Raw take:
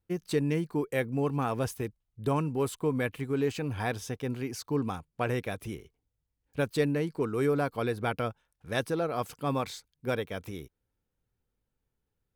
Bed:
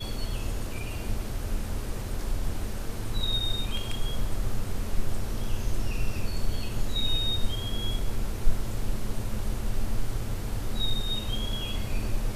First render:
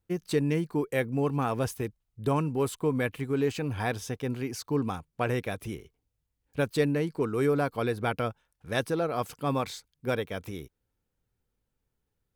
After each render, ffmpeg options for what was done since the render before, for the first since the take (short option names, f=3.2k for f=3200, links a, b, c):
-af "volume=1.5dB"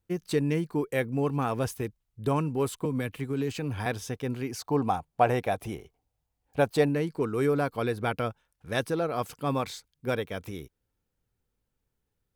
-filter_complex "[0:a]asettb=1/sr,asplit=3[a][b][c];[a]atrim=end=2.854[d];[b]atrim=start=2.85:end=3.86,asetpts=PTS-STARTPTS,afade=t=in:d=0.004:c=qsin,afade=t=out:st=1.006:d=0.004:c=qsin,acrossover=split=300|3000[e][f][g];[f]acompressor=threshold=-32dB:ratio=6:attack=3.2:release=140:knee=2.83:detection=peak[h];[e][h][g]amix=inputs=3:normalize=0[i];[c]atrim=start=3.856[j];[d][i]acrossfade=d=0.004:c1=hsin:c2=qsin[k];[k][j]acrossfade=d=0.004:c1=qsin:c2=hsin,asettb=1/sr,asplit=3[l][m][n];[l]atrim=end=4.594[o];[m]atrim=start=4.59:end=6.89,asetpts=PTS-STARTPTS,afade=t=in:d=0.004:c=qsin,afade=t=out:st=2.296:d=0.004:c=qsin,equalizer=f=750:t=o:w=0.7:g=12.5[p];[n]atrim=start=6.886[q];[o][p]acrossfade=d=0.004:c1=hsin:c2=qsin[r];[r][q]acrossfade=d=0.004:c1=qsin:c2=hsin"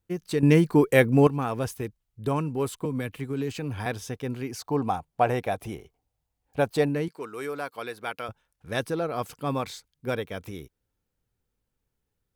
-filter_complex "[0:a]asettb=1/sr,asplit=3[a][b][c];[a]atrim=end=7.084[d];[b]atrim=start=7.08:end=8.29,asetpts=PTS-STARTPTS,afade=t=in:d=0.004:c=qsin,afade=t=out:st=1.206:d=0.004:c=qsin,highpass=f=970:p=1[e];[c]atrim=start=8.286[f];[d][e]acrossfade=d=0.004:c1=hsin:c2=qsin[g];[g][f]acrossfade=d=0.004:c1=qsin:c2=hsin,asplit=3[h][i][j];[h]atrim=end=0.432[k];[i]atrim=start=0.428:end=1.272,asetpts=PTS-STARTPTS,volume=9.5dB[l];[j]atrim=start=1.268[m];[k][l]acrossfade=d=0.004:c1=hsin:c2=hsin[n];[n][m]acrossfade=d=0.004:c1=hsin:c2=hsin"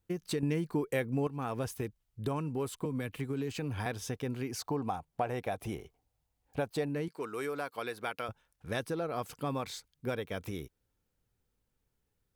-af "acompressor=threshold=-33dB:ratio=3"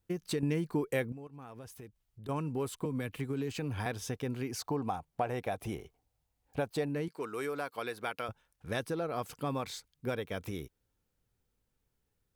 -filter_complex "[0:a]asettb=1/sr,asplit=3[a][b][c];[a]atrim=end=1.124[d];[b]atrim=start=1.12:end=2.29,asetpts=PTS-STARTPTS,afade=t=in:d=0.004:c=qsin,afade=t=out:st=1.166:d=0.004:c=qsin,acompressor=threshold=-51dB:ratio=2.5:attack=3.2:release=140:knee=1:detection=peak[e];[c]atrim=start=2.286[f];[d][e]acrossfade=d=0.004:c1=hsin:c2=qsin[g];[g][f]acrossfade=d=0.004:c1=qsin:c2=hsin"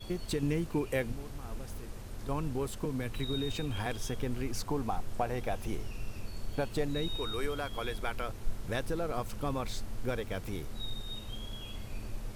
-filter_complex "[1:a]volume=-11dB[a];[0:a][a]amix=inputs=2:normalize=0"